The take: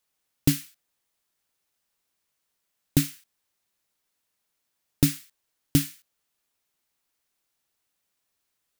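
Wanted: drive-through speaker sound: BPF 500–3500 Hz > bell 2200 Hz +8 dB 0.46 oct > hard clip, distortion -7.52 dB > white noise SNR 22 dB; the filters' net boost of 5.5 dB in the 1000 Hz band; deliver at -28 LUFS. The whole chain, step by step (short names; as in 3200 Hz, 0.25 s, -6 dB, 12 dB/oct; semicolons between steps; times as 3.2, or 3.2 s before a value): BPF 500–3500 Hz; bell 1000 Hz +7.5 dB; bell 2200 Hz +8 dB 0.46 oct; hard clip -28.5 dBFS; white noise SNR 22 dB; gain +11 dB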